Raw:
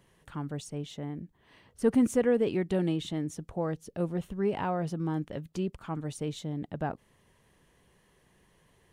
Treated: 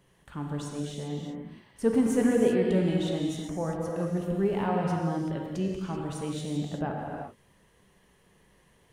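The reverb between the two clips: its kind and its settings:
reverb whose tail is shaped and stops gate 410 ms flat, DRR −1 dB
level −1 dB

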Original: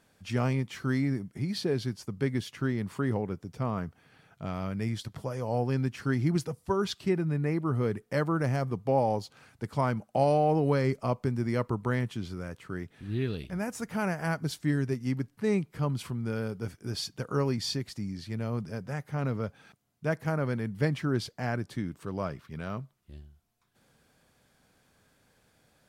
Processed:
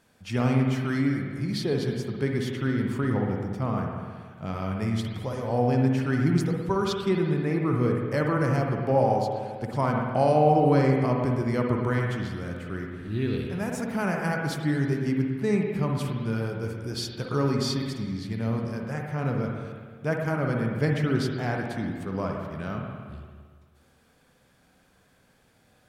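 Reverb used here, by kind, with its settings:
spring reverb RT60 1.7 s, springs 53/57 ms, chirp 70 ms, DRR 0.5 dB
level +1.5 dB

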